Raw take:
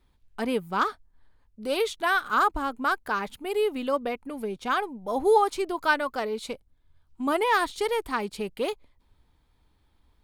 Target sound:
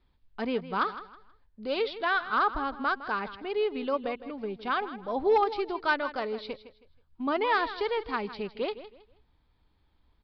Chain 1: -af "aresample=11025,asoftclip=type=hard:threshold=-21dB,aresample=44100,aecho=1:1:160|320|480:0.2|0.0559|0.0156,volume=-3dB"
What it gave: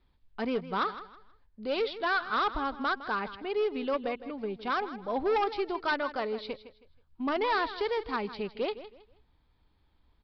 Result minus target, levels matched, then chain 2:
hard clip: distortion +14 dB
-af "aresample=11025,asoftclip=type=hard:threshold=-14.5dB,aresample=44100,aecho=1:1:160|320|480:0.2|0.0559|0.0156,volume=-3dB"

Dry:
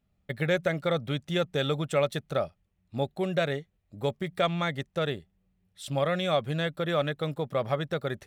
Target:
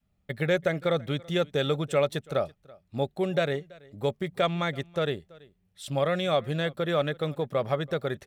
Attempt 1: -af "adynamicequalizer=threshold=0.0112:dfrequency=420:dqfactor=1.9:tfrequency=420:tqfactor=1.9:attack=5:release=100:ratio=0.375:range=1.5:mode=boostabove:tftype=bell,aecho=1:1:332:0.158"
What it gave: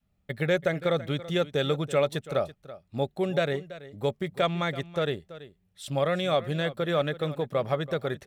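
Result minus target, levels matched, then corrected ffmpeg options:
echo-to-direct +7.5 dB
-af "adynamicequalizer=threshold=0.0112:dfrequency=420:dqfactor=1.9:tfrequency=420:tqfactor=1.9:attack=5:release=100:ratio=0.375:range=1.5:mode=boostabove:tftype=bell,aecho=1:1:332:0.0668"

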